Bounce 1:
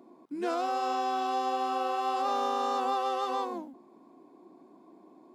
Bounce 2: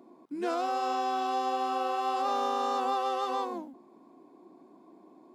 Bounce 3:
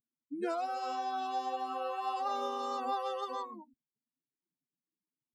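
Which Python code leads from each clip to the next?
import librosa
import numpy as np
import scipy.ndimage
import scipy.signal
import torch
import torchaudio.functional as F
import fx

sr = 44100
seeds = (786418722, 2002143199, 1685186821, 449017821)

y1 = x
y2 = fx.bin_expand(y1, sr, power=3.0)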